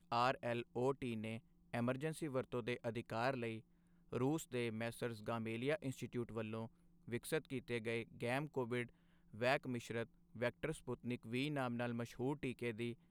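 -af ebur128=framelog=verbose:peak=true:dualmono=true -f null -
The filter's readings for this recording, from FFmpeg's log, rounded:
Integrated loudness:
  I:         -39.9 LUFS
  Threshold: -50.0 LUFS
Loudness range:
  LRA:         1.6 LU
  Threshold: -60.3 LUFS
  LRA low:   -41.3 LUFS
  LRA high:  -39.6 LUFS
True peak:
  Peak:      -21.8 dBFS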